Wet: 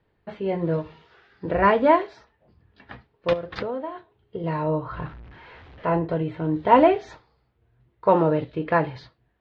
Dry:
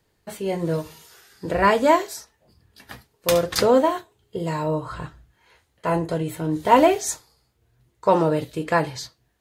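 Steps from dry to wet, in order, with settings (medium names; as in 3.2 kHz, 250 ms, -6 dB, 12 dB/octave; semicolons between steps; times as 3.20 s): 4.97–5.86 s: jump at every zero crossing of -39.5 dBFS; Bessel low-pass 2.3 kHz, order 6; 3.33–4.44 s: compression 6:1, threshold -28 dBFS, peak gain reduction 14.5 dB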